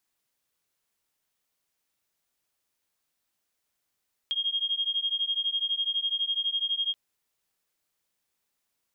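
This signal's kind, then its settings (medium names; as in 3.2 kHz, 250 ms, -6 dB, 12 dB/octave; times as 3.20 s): beating tones 3.24 kHz, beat 12 Hz, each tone -29 dBFS 2.63 s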